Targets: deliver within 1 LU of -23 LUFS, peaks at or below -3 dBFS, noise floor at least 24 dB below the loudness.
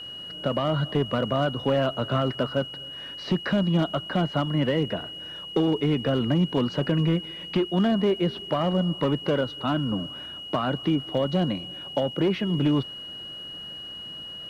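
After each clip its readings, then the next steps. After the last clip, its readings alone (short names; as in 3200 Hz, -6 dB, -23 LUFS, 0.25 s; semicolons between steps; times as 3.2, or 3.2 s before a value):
clipped 0.8%; flat tops at -15.5 dBFS; steady tone 2900 Hz; tone level -36 dBFS; loudness -26.0 LUFS; peak -15.5 dBFS; loudness target -23.0 LUFS
-> clip repair -15.5 dBFS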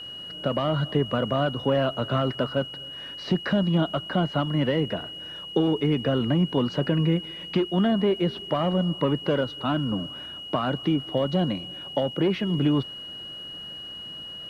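clipped 0.0%; steady tone 2900 Hz; tone level -36 dBFS
-> notch 2900 Hz, Q 30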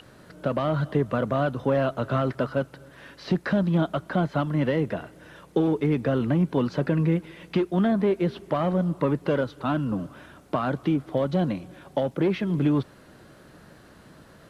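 steady tone none; loudness -26.0 LUFS; peak -10.5 dBFS; loudness target -23.0 LUFS
-> gain +3 dB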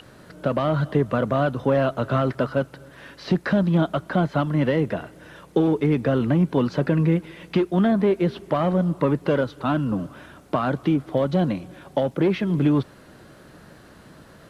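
loudness -23.0 LUFS; peak -7.5 dBFS; noise floor -49 dBFS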